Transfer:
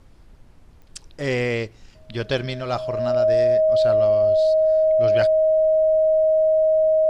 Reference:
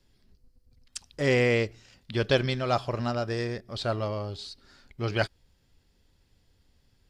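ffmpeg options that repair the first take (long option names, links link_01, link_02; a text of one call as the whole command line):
ffmpeg -i in.wav -af "adeclick=threshold=4,bandreject=frequency=630:width=30,agate=range=-21dB:threshold=-40dB" out.wav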